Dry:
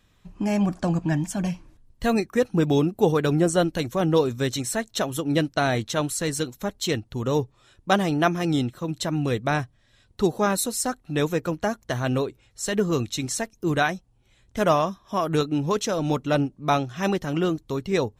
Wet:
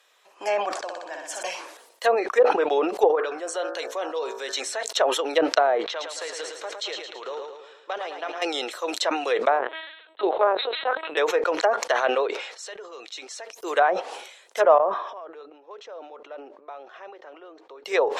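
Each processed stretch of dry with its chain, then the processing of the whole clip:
0:00.79–0:01.43: high-shelf EQ 7,200 Hz −7.5 dB + downward compressor 3 to 1, threshold −34 dBFS + flutter between parallel walls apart 10.6 metres, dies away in 1.2 s
0:03.15–0:04.83: high-shelf EQ 9,100 Hz −11 dB + hum removal 55.98 Hz, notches 32 + downward compressor 5 to 1, threshold −28 dBFS
0:05.84–0:08.42: band-pass filter 210–3,800 Hz + downward compressor 8 to 1, threshold −32 dBFS + repeating echo 110 ms, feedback 52%, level −6 dB
0:09.59–0:11.17: low-shelf EQ 79 Hz +11.5 dB + linear-prediction vocoder at 8 kHz pitch kept
0:12.27–0:13.53: low-pass filter 4,800 Hz + downward compressor 3 to 1, threshold −43 dBFS
0:14.78–0:17.85: downward compressor 12 to 1, threshold −36 dBFS + head-to-tape spacing loss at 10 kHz 39 dB
whole clip: Butterworth high-pass 460 Hz 36 dB per octave; treble cut that deepens with the level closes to 930 Hz, closed at −21.5 dBFS; level that may fall only so fast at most 63 dB per second; level +6 dB

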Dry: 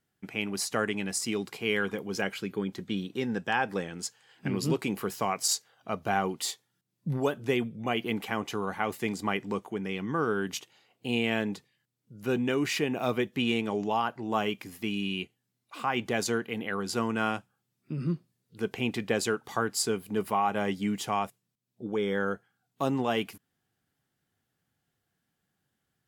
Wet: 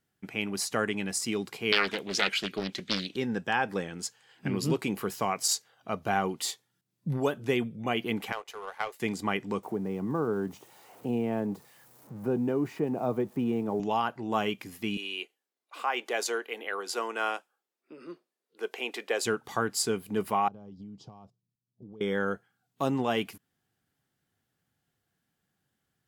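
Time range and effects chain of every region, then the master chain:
0:01.72–0:03.16: meter weighting curve D + highs frequency-modulated by the lows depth 0.52 ms
0:08.32–0:09.00: Butterworth high-pass 410 Hz 48 dB per octave + power curve on the samples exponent 1.4
0:09.63–0:13.80: spike at every zero crossing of −31 dBFS + drawn EQ curve 880 Hz 0 dB, 1,600 Hz −12 dB, 3,000 Hz −21 dB + multiband upward and downward compressor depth 40%
0:14.97–0:19.25: high-pass filter 390 Hz 24 dB per octave + one half of a high-frequency compander decoder only
0:20.48–0:22.01: low-pass filter 1,100 Hz + downward compressor 5 to 1, threshold −37 dBFS + drawn EQ curve 120 Hz 0 dB, 300 Hz −8 dB, 1,200 Hz −13 dB, 1,900 Hz −23 dB, 5,000 Hz +15 dB, 9,400 Hz +5 dB
whole clip: no processing

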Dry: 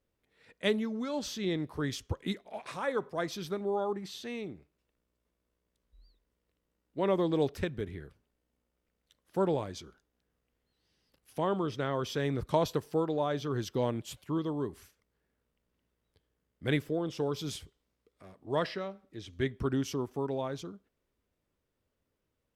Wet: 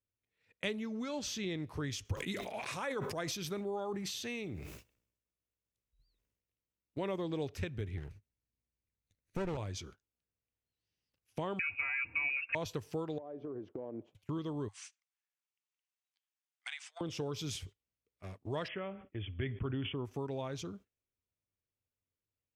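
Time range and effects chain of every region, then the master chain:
0:02.05–0:07.16: high-shelf EQ 9,400 Hz +9.5 dB + level that may fall only so fast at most 55 dB per second
0:07.97–0:09.57: lower of the sound and its delayed copy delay 0.47 ms + low-shelf EQ 210 Hz +7 dB
0:11.59–0:12.55: comb filter 4.6 ms, depth 78% + voice inversion scrambler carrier 2,700 Hz
0:13.18–0:14.15: flat-topped band-pass 440 Hz, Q 0.91 + downward compressor 8 to 1, threshold −39 dBFS
0:14.68–0:17.01: Chebyshev band-pass filter 750–9,000 Hz, order 5 + downward compressor, threshold −46 dBFS + spectral tilt +2.5 dB per octave
0:18.68–0:20.05: linear-phase brick-wall low-pass 3,500 Hz + level that may fall only so fast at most 140 dB per second
whole clip: noise gate −54 dBFS, range −21 dB; graphic EQ with 15 bands 100 Hz +11 dB, 2,500 Hz +7 dB, 6,300 Hz +6 dB; downward compressor 2.5 to 1, threshold −43 dBFS; level +3 dB

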